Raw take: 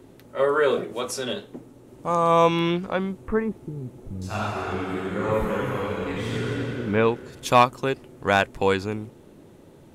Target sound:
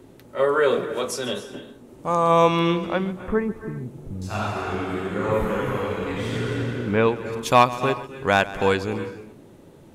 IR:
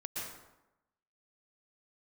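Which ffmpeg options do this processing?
-filter_complex "[0:a]asplit=2[link_01][link_02];[1:a]atrim=start_sample=2205,afade=type=out:start_time=0.34:duration=0.01,atrim=end_sample=15435,adelay=137[link_03];[link_02][link_03]afir=irnorm=-1:irlink=0,volume=-12.5dB[link_04];[link_01][link_04]amix=inputs=2:normalize=0,volume=1dB"

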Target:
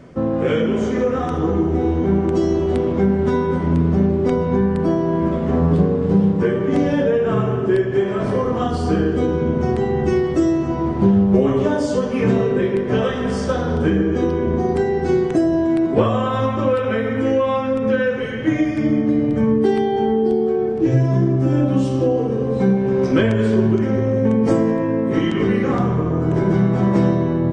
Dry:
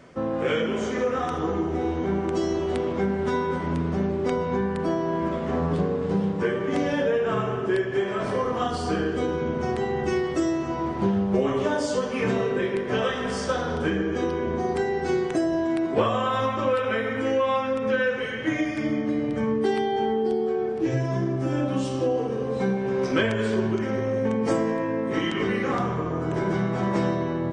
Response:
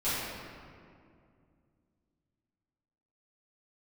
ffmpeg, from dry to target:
-af "lowshelf=frequency=480:gain=11.5"

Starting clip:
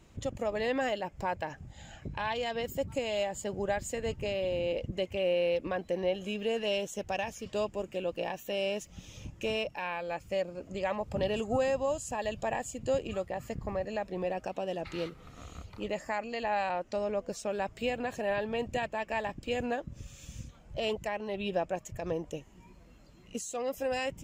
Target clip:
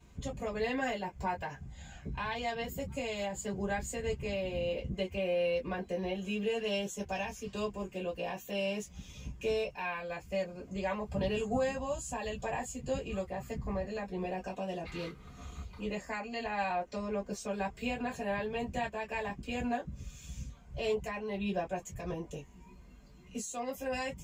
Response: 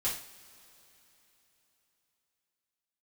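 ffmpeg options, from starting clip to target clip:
-filter_complex "[1:a]atrim=start_sample=2205,atrim=end_sample=3528,asetrate=88200,aresample=44100[link_01];[0:a][link_01]afir=irnorm=-1:irlink=0"

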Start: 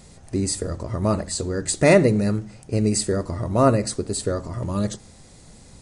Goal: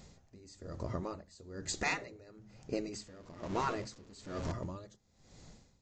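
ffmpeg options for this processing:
ffmpeg -i in.wav -filter_complex "[0:a]asettb=1/sr,asplit=3[link_01][link_02][link_03];[link_01]atrim=end=2.934[link_04];[link_02]atrim=start=2.93:end=4.52,asetpts=PTS-STARTPTS,afade=type=in:duration=0.004:curve=qsin,afade=type=out:start_time=1.586:duration=0.004:curve=qsin,aeval=exprs='val(0)+0.5*0.0398*sgn(val(0))':channel_layout=same[link_05];[link_03]atrim=start=4.516[link_06];[link_04][link_05]acrossfade=duration=0.004:curve1=hsin:curve2=qsin[link_07];[link_07][link_06]acrossfade=duration=0.004:curve1=qsin:curve2=hsin,aresample=16000,aresample=44100,afftfilt=real='re*lt(hypot(re,im),0.501)':imag='im*lt(hypot(re,im),0.501)':win_size=1024:overlap=0.75,aeval=exprs='val(0)*pow(10,-21*(0.5-0.5*cos(2*PI*1.1*n/s))/20)':channel_layout=same,volume=-7dB" out.wav

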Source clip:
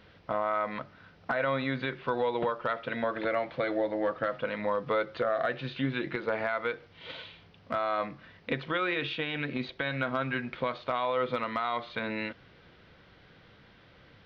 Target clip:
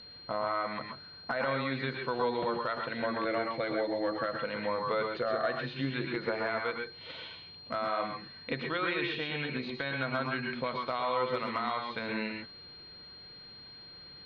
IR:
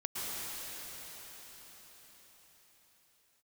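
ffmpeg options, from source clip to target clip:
-filter_complex "[0:a]bandreject=frequency=50:width_type=h:width=6,bandreject=frequency=100:width_type=h:width=6[link_01];[1:a]atrim=start_sample=2205,atrim=end_sample=6174[link_02];[link_01][link_02]afir=irnorm=-1:irlink=0,aeval=exprs='val(0)+0.00398*sin(2*PI*4200*n/s)':channel_layout=same"

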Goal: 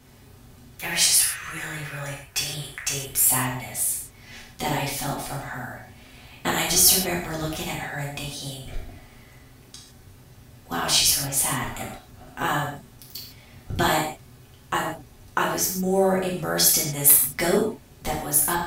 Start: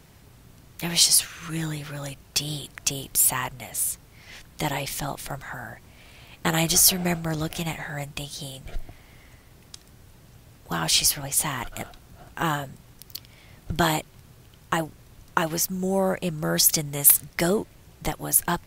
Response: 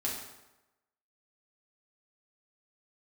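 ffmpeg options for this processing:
-filter_complex "[0:a]asettb=1/sr,asplit=3[link_01][link_02][link_03];[link_01]atrim=end=0.814[link_04];[link_02]atrim=start=0.81:end=3.27,asetpts=PTS-STARTPTS,afade=type=in:duration=0.004:curve=qsin,afade=type=out:start_time=2.456:duration=0.004:curve=qsin,equalizer=frequency=250:width_type=o:width=1:gain=-10,equalizer=frequency=2000:width_type=o:width=1:gain=8,equalizer=frequency=4000:width_type=o:width=1:gain=-6[link_05];[link_03]atrim=start=3.266[link_06];[link_04][link_05]acrossfade=duration=0.004:curve1=hsin:curve2=qsin[link_07];[link_07][link_06]acrossfade=duration=0.004:curve1=qsin:curve2=hsin[link_08];[1:a]atrim=start_sample=2205,afade=type=out:start_time=0.21:duration=0.01,atrim=end_sample=9702,asetrate=42777,aresample=44100[link_09];[link_08][link_09]afir=irnorm=-1:irlink=0,volume=-2dB"

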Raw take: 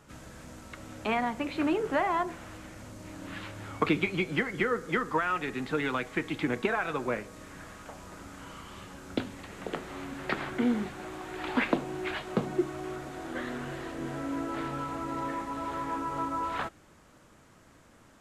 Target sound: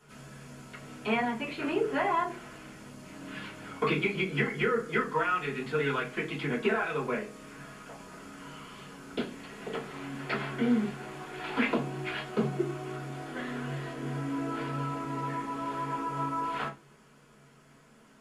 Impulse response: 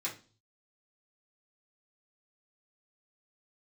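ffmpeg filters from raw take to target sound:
-filter_complex "[0:a]lowshelf=frequency=83:gain=8[link_01];[1:a]atrim=start_sample=2205,asetrate=57330,aresample=44100[link_02];[link_01][link_02]afir=irnorm=-1:irlink=0"

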